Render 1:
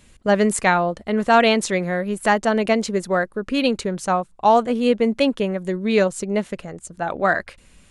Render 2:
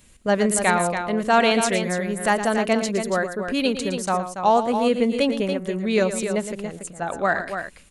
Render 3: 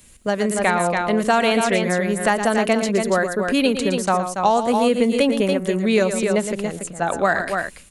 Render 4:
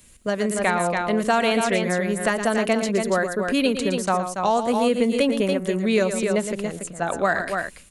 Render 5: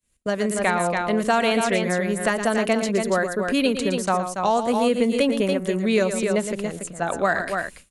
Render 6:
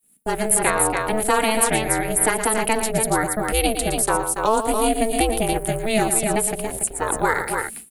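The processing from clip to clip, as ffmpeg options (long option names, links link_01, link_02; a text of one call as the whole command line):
ffmpeg -i in.wav -filter_complex "[0:a]highshelf=frequency=8500:gain=10.5,asplit=2[link_01][link_02];[link_02]aecho=0:1:113.7|282.8:0.282|0.398[link_03];[link_01][link_03]amix=inputs=2:normalize=0,volume=-3dB" out.wav
ffmpeg -i in.wav -filter_complex "[0:a]acrossover=split=150|3400|7500[link_01][link_02][link_03][link_04];[link_01]acompressor=threshold=-44dB:ratio=4[link_05];[link_02]acompressor=threshold=-20dB:ratio=4[link_06];[link_03]acompressor=threshold=-45dB:ratio=4[link_07];[link_04]acompressor=threshold=-49dB:ratio=4[link_08];[link_05][link_06][link_07][link_08]amix=inputs=4:normalize=0,highshelf=frequency=7800:gain=8.5,dynaudnorm=framelen=350:gausssize=3:maxgain=4dB,volume=2dB" out.wav
ffmpeg -i in.wav -af "bandreject=frequency=820:width=18,volume=-2.5dB" out.wav
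ffmpeg -i in.wav -af "agate=range=-33dB:threshold=-39dB:ratio=3:detection=peak" out.wav
ffmpeg -i in.wav -filter_complex "[0:a]acrossover=split=220|980|2000[link_01][link_02][link_03][link_04];[link_01]alimiter=level_in=10dB:limit=-24dB:level=0:latency=1,volume=-10dB[link_05];[link_05][link_02][link_03][link_04]amix=inputs=4:normalize=0,aeval=exprs='val(0)*sin(2*PI*220*n/s)':channel_layout=same,aexciter=amount=7.1:drive=7.1:freq=8900,volume=4dB" out.wav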